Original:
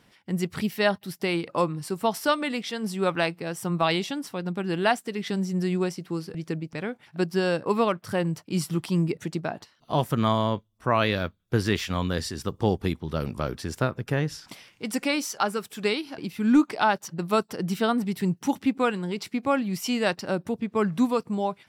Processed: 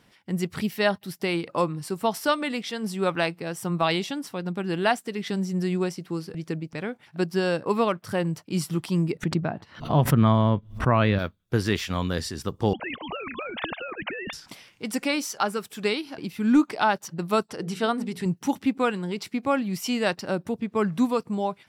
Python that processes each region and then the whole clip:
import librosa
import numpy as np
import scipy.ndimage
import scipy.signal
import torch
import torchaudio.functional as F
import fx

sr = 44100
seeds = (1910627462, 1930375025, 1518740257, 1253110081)

y = fx.chain(x, sr, fx.bass_treble(bass_db=8, treble_db=-14),
    fx.pre_swell(db_per_s=140.0), at=(9.23, 11.19))
y = fx.chain(y, sr, fx.sine_speech(),
    fx.spectral_comp(ratio=4.0), at=(12.73, 14.33))
y = fx.chain(y, sr, fx.lowpass(hz=11000.0, slope=24),
    fx.peak_eq(hz=200.0, db=-5.0, octaves=0.27),
    fx.hum_notches(base_hz=60, count=9), at=(17.46, 18.26))